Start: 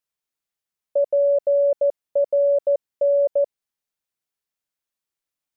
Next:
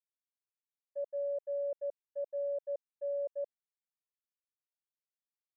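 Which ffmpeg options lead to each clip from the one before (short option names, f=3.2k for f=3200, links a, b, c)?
-af "alimiter=level_in=1dB:limit=-24dB:level=0:latency=1:release=232,volume=-1dB,agate=range=-33dB:threshold=-23dB:ratio=3:detection=peak"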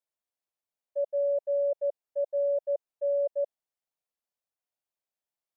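-af "equalizer=f=650:w=1.3:g=9.5"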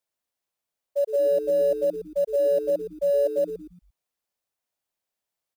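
-filter_complex "[0:a]acrusher=bits=7:mode=log:mix=0:aa=0.000001,asplit=5[a][b][c][d][e];[b]adelay=115,afreqshift=-130,volume=-10.5dB[f];[c]adelay=230,afreqshift=-260,volume=-19.6dB[g];[d]adelay=345,afreqshift=-390,volume=-28.7dB[h];[e]adelay=460,afreqshift=-520,volume=-37.9dB[i];[a][f][g][h][i]amix=inputs=5:normalize=0,volume=5.5dB"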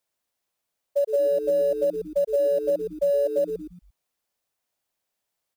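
-af "acompressor=threshold=-24dB:ratio=6,volume=4.5dB"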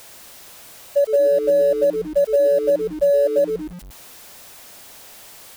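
-af "aeval=exprs='val(0)+0.5*0.00891*sgn(val(0))':c=same,volume=5.5dB"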